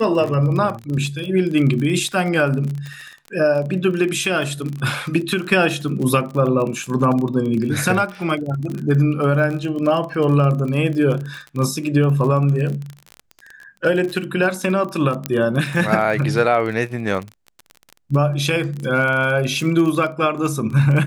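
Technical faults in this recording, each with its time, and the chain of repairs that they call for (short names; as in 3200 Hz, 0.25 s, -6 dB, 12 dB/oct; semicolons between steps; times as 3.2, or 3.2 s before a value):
crackle 29/s -25 dBFS
15.26 pop -5 dBFS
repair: de-click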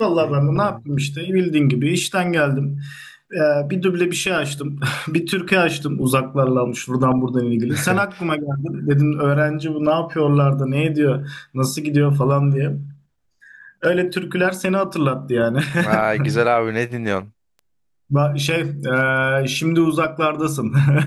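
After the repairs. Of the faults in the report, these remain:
none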